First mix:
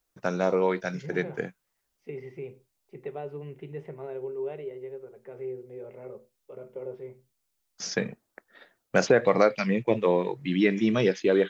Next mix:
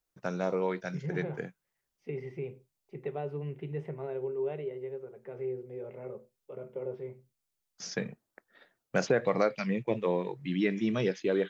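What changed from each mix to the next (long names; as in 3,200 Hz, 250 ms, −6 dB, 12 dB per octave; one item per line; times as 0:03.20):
first voice −6.5 dB
master: add parametric band 150 Hz +4.5 dB 0.64 octaves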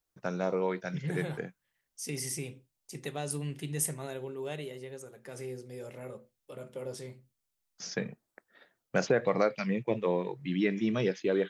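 second voice: remove loudspeaker in its box 110–2,100 Hz, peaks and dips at 280 Hz −9 dB, 400 Hz +8 dB, 1,200 Hz −4 dB, 1,700 Hz −9 dB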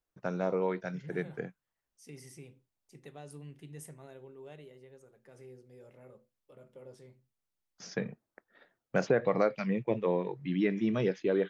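second voice −11.0 dB
master: add high-shelf EQ 3,100 Hz −9 dB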